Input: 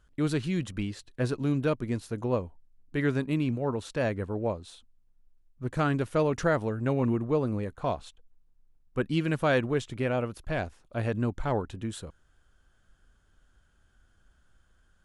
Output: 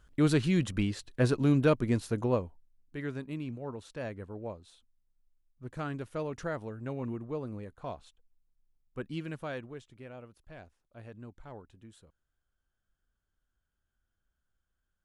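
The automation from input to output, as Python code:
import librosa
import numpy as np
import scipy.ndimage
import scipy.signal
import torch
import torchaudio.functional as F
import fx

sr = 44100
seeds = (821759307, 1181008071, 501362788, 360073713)

y = fx.gain(x, sr, db=fx.line((2.13, 2.5), (2.97, -10.0), (9.21, -10.0), (9.89, -18.5)))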